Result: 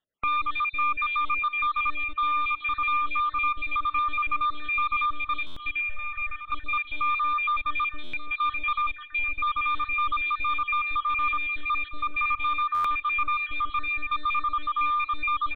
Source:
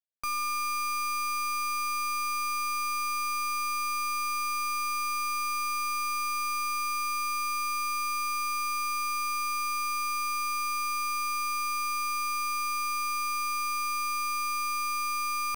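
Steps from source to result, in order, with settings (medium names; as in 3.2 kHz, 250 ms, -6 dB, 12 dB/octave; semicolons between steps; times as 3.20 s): random holes in the spectrogram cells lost 57%; reverb removal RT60 1.9 s; in parallel at 0 dB: peak limiter -33.5 dBFS, peak gain reduction 8 dB; on the sum: sine folder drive 6 dB, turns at -22 dBFS; 5.81–6.52 s: static phaser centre 1.1 kHz, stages 6; on a send: feedback delay 1186 ms, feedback 33%, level -17 dB; on the sum: resampled via 8 kHz; buffer glitch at 5.46/8.03/12.74 s, samples 512, times 8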